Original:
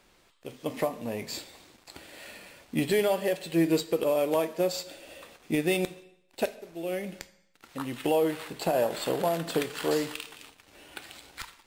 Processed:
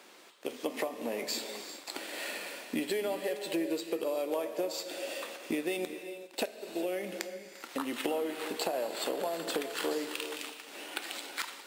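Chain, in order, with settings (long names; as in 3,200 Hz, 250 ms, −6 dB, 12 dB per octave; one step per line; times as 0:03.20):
high-pass filter 250 Hz 24 dB per octave
downward compressor 6 to 1, threshold −39 dBFS, peak gain reduction 17.5 dB
reverb whose tail is shaped and stops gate 430 ms rising, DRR 10 dB
level +7.5 dB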